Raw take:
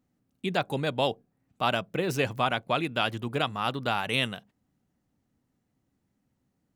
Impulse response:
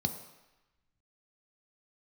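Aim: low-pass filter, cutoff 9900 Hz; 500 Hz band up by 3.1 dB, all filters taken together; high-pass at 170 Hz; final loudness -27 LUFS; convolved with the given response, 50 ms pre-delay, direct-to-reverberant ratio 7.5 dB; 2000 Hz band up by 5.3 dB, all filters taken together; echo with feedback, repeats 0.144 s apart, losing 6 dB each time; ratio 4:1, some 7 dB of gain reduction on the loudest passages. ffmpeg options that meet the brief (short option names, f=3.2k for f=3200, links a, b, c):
-filter_complex "[0:a]highpass=170,lowpass=9.9k,equalizer=f=500:t=o:g=3.5,equalizer=f=2k:t=o:g=7.5,acompressor=threshold=-26dB:ratio=4,aecho=1:1:144|288|432|576|720|864:0.501|0.251|0.125|0.0626|0.0313|0.0157,asplit=2[a][b];[1:a]atrim=start_sample=2205,adelay=50[c];[b][c]afir=irnorm=-1:irlink=0,volume=-11dB[d];[a][d]amix=inputs=2:normalize=0,volume=2.5dB"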